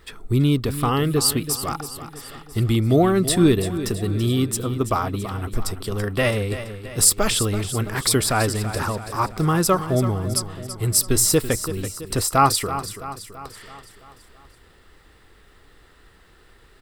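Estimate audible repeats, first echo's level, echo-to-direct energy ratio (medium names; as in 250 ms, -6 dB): 5, -12.0 dB, -10.5 dB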